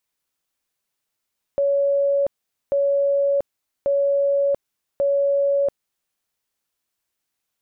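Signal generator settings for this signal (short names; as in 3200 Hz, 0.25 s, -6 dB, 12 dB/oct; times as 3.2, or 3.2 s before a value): tone bursts 561 Hz, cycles 385, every 1.14 s, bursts 4, -16 dBFS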